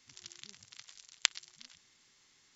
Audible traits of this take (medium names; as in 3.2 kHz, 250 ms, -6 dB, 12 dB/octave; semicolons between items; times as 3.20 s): noise floor -68 dBFS; spectral tilt +2.5 dB/octave